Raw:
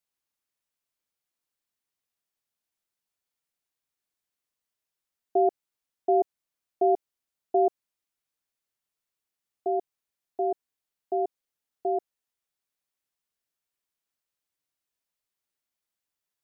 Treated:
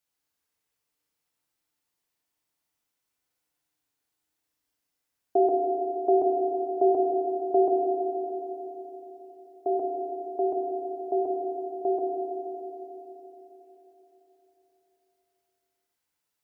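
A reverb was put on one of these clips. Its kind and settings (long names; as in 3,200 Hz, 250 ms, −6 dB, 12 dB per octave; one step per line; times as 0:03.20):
feedback delay network reverb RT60 4 s, high-frequency decay 0.5×, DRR −2 dB
level +2 dB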